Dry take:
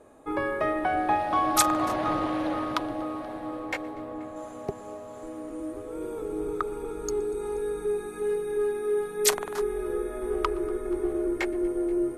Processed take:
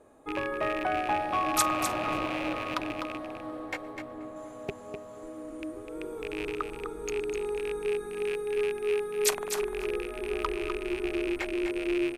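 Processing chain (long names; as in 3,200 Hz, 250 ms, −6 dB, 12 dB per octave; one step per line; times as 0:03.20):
loose part that buzzes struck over −37 dBFS, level −21 dBFS
single-tap delay 252 ms −7.5 dB
level −4 dB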